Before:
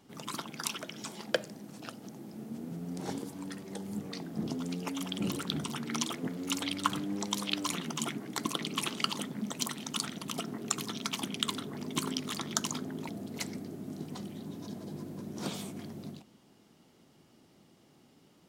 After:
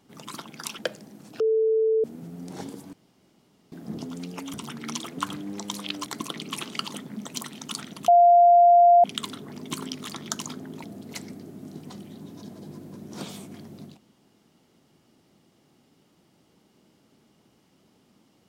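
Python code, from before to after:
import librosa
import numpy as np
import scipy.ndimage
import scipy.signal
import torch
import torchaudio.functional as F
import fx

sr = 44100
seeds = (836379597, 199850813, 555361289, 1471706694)

y = fx.edit(x, sr, fx.cut(start_s=0.79, length_s=0.49),
    fx.bleep(start_s=1.89, length_s=0.64, hz=442.0, db=-18.5),
    fx.room_tone_fill(start_s=3.42, length_s=0.79),
    fx.cut(start_s=5.03, length_s=0.57),
    fx.cut(start_s=6.25, length_s=0.57),
    fx.cut(start_s=7.69, length_s=0.62),
    fx.bleep(start_s=10.33, length_s=0.96, hz=697.0, db=-11.5), tone=tone)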